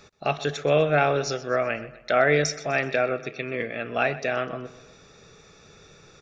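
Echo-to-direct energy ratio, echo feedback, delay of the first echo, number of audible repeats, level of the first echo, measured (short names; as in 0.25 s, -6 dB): -16.0 dB, 48%, 0.126 s, 3, -17.0 dB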